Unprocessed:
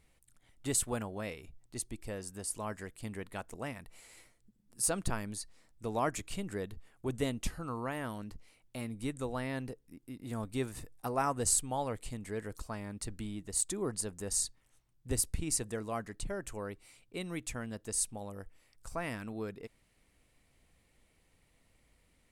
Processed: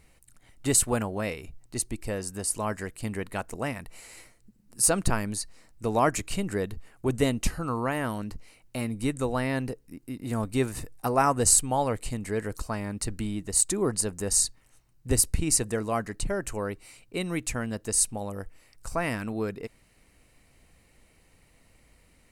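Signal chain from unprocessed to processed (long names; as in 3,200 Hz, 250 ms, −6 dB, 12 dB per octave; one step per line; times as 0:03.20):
notch filter 3,400 Hz, Q 8.9
level +9 dB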